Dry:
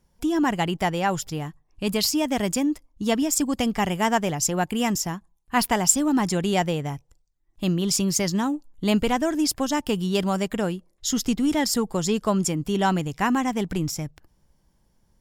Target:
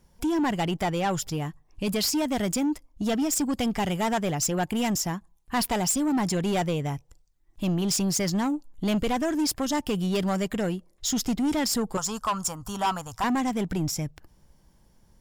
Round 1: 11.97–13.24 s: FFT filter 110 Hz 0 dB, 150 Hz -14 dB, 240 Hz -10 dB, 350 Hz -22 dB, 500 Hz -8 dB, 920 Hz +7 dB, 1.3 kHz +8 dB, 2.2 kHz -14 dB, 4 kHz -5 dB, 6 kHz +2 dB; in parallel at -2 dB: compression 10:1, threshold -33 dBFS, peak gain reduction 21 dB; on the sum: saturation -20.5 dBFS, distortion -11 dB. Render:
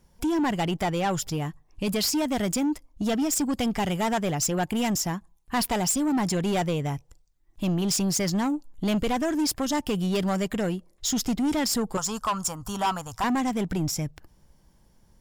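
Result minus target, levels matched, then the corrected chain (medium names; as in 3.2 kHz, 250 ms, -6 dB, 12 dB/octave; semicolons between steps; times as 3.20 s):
compression: peak gain reduction -6 dB
11.97–13.24 s: FFT filter 110 Hz 0 dB, 150 Hz -14 dB, 240 Hz -10 dB, 350 Hz -22 dB, 500 Hz -8 dB, 920 Hz +7 dB, 1.3 kHz +8 dB, 2.2 kHz -14 dB, 4 kHz -5 dB, 6 kHz +2 dB; in parallel at -2 dB: compression 10:1, threshold -39.5 dBFS, peak gain reduction 27 dB; on the sum: saturation -20.5 dBFS, distortion -11 dB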